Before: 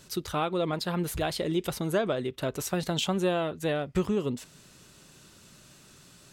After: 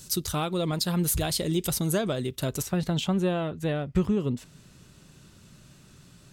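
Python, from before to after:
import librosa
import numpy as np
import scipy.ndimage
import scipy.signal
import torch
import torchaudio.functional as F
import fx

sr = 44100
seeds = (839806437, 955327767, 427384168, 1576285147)

y = fx.bass_treble(x, sr, bass_db=9, treble_db=fx.steps((0.0, 14.0), (2.61, -2.0)))
y = F.gain(torch.from_numpy(y), -2.0).numpy()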